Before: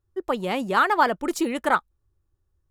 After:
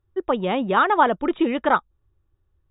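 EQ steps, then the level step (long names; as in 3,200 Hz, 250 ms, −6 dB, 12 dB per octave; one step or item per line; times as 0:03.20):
dynamic equaliser 2,100 Hz, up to −6 dB, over −36 dBFS, Q 1.1
linear-phase brick-wall low-pass 3,800 Hz
+4.0 dB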